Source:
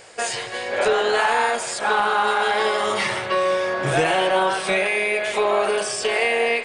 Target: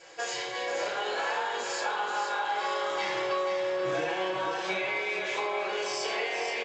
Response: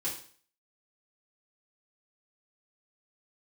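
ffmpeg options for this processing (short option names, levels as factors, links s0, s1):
-filter_complex "[0:a]highpass=f=310:p=1[s0];[1:a]atrim=start_sample=2205[s1];[s0][s1]afir=irnorm=-1:irlink=0,acompressor=threshold=0.0891:ratio=6,aecho=1:1:481|962|1443|1924|2405:0.447|0.201|0.0905|0.0407|0.0183,volume=0.422" -ar 16000 -c:a g722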